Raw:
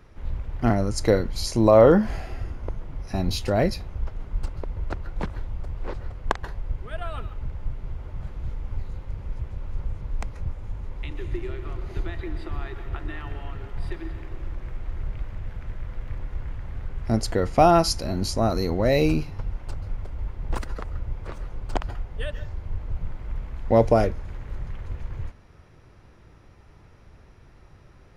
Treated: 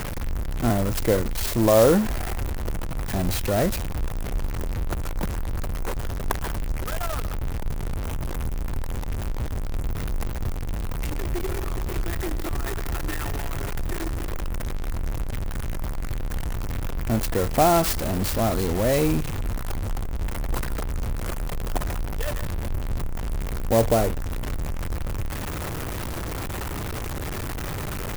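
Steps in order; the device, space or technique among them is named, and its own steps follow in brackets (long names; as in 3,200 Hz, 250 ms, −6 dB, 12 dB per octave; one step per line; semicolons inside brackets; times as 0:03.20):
early CD player with a faulty converter (converter with a step at zero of −20.5 dBFS; converter with an unsteady clock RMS 0.054 ms)
level −3.5 dB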